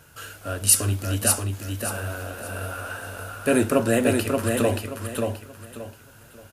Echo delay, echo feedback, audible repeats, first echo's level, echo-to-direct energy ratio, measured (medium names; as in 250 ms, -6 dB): 579 ms, 28%, 3, -4.0 dB, -3.5 dB